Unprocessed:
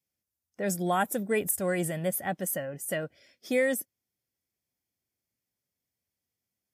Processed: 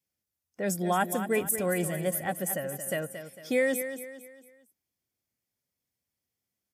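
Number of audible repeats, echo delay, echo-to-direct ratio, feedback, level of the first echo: 4, 0.226 s, -9.5 dB, 40%, -10.0 dB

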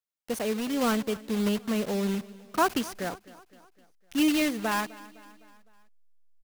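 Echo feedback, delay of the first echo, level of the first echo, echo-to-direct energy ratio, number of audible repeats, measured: 53%, 0.255 s, -20.0 dB, -18.5 dB, 3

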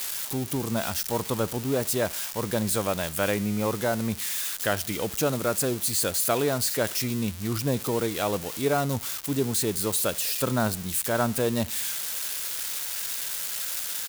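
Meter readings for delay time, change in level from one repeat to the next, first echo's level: 64 ms, -6.5 dB, -23.0 dB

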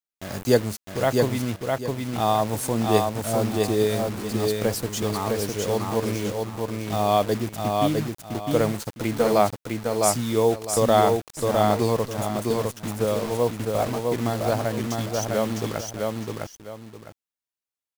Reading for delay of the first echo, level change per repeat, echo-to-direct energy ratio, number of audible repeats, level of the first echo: 0.657 s, -11.0 dB, -2.5 dB, 2, -3.0 dB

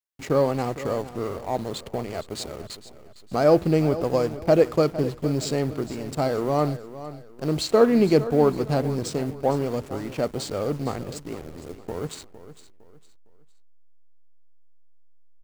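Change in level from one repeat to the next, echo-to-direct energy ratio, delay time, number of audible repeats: -9.5 dB, -14.0 dB, 0.458 s, 3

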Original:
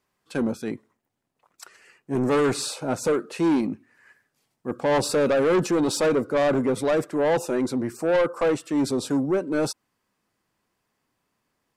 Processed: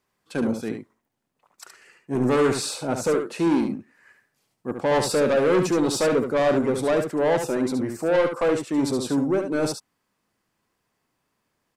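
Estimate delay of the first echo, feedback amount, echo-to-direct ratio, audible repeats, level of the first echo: 71 ms, no steady repeat, -6.5 dB, 1, -6.5 dB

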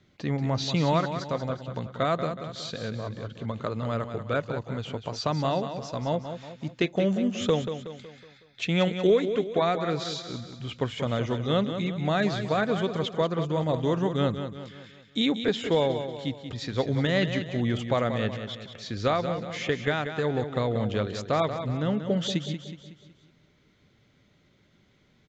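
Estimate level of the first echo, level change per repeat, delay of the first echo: -9.0 dB, -6.5 dB, 0.185 s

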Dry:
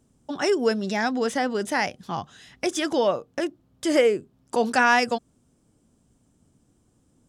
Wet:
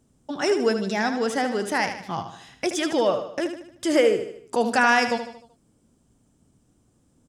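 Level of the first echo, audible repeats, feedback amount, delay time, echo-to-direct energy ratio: -9.0 dB, 4, 47%, 76 ms, -8.0 dB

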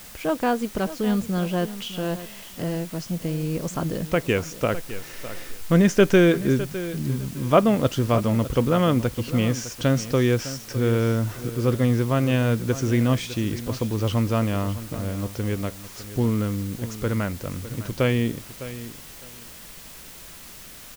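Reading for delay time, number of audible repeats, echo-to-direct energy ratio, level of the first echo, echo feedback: 0.607 s, 2, -14.0 dB, -14.0 dB, 20%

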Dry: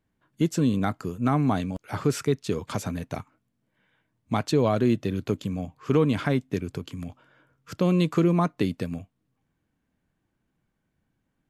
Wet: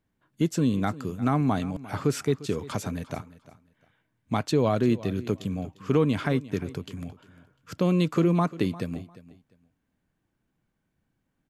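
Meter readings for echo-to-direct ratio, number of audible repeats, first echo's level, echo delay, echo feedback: -18.0 dB, 2, -18.0 dB, 0.35 s, 21%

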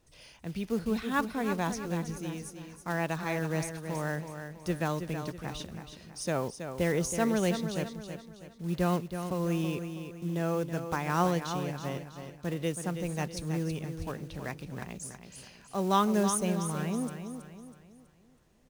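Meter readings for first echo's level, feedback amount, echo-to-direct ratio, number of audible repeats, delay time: -8.5 dB, 41%, -7.5 dB, 4, 0.324 s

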